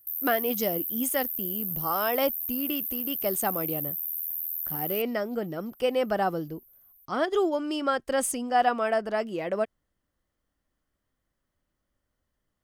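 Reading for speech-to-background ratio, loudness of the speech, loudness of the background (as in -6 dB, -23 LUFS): 0.5 dB, -29.0 LUFS, -29.5 LUFS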